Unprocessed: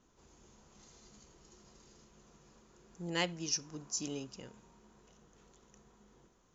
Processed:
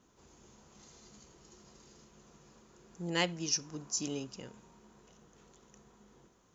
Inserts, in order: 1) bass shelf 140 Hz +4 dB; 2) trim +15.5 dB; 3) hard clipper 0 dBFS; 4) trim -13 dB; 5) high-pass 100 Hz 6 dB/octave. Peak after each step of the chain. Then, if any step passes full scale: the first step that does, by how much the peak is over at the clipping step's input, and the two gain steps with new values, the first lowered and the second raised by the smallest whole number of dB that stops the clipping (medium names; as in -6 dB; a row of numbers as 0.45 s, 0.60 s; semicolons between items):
-19.0 dBFS, -3.5 dBFS, -3.5 dBFS, -16.5 dBFS, -15.5 dBFS; nothing clips